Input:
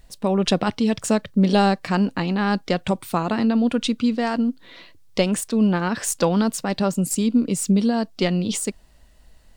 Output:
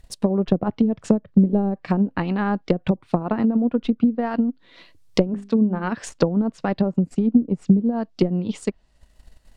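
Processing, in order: transient shaper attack +7 dB, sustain -6 dB; 5.27–5.92 notches 50/100/150/200/250/300/350/400 Hz; treble ducked by the level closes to 410 Hz, closed at -12.5 dBFS; gain -1.5 dB

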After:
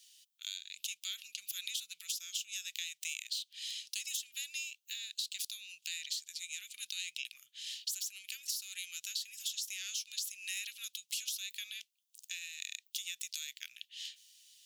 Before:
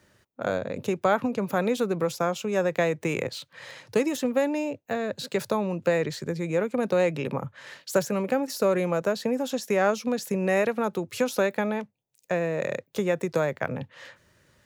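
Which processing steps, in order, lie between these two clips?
elliptic high-pass 3000 Hz, stop band 70 dB; compressor 10:1, threshold -44 dBFS, peak gain reduction 11.5 dB; gain +9 dB

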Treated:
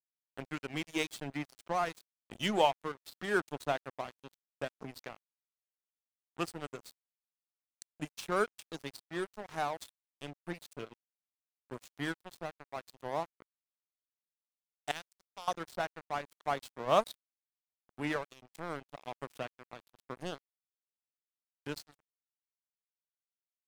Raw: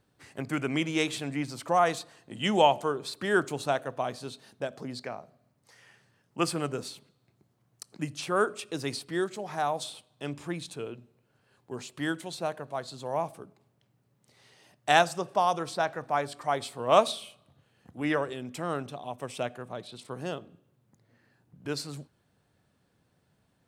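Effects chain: reverb removal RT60 0.64 s; 14.91–15.48 passive tone stack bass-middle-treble 5-5-5; in parallel at -1 dB: compressor 16:1, threshold -36 dBFS, peak gain reduction 22 dB; on the sum: tremolo 0.84 Hz, depth 33%; crossover distortion -34.5 dBFS; gain -4 dB

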